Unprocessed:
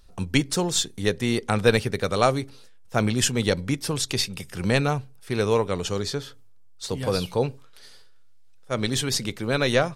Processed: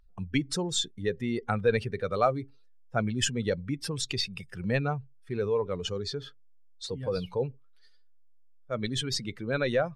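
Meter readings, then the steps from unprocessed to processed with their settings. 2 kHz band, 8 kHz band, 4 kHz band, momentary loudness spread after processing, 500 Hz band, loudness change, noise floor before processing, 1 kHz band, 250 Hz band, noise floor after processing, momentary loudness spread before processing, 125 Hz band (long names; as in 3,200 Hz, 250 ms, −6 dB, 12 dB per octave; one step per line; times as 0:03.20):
−7.0 dB, −8.5 dB, −6.0 dB, 10 LU, −5.0 dB, −6.0 dB, −46 dBFS, −5.5 dB, −6.5 dB, −54 dBFS, 9 LU, −6.5 dB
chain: expanding power law on the bin magnitudes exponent 1.7
parametric band 1,800 Hz +7.5 dB 2 octaves
level −7 dB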